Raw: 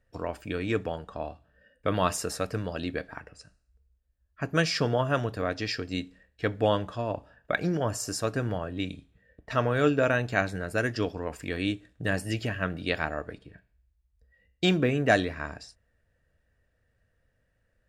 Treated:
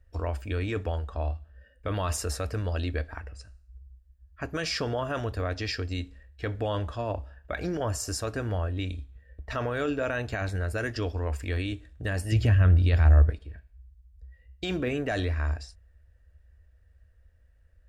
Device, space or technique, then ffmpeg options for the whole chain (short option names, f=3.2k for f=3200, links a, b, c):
car stereo with a boomy subwoofer: -filter_complex "[0:a]lowshelf=f=100:t=q:w=3:g=11.5,alimiter=limit=-20.5dB:level=0:latency=1:release=23,asettb=1/sr,asplit=3[a][b][c];[a]atrim=end=12.324[d];[b]atrim=start=12.32:end=13.3,asetpts=PTS-STARTPTS,afade=t=in:d=0.004:c=qsin,afade=t=out:st=0.976:d=0.004:c=qsin,equalizer=f=91:w=0.52:g=12.5[e];[c]atrim=start=13.296[f];[d][e]acrossfade=d=0.004:c1=hsin:c2=qsin[g];[g][f]acrossfade=d=0.004:c1=qsin:c2=hsin"